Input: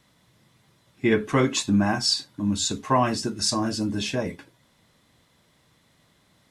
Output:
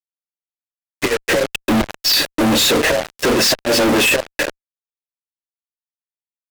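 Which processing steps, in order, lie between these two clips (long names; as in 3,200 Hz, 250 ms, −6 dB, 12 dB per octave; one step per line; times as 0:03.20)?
formant filter e
gate with flip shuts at −31 dBFS, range −31 dB
leveller curve on the samples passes 3
frequency shifter +20 Hz
fuzz pedal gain 61 dB, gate −56 dBFS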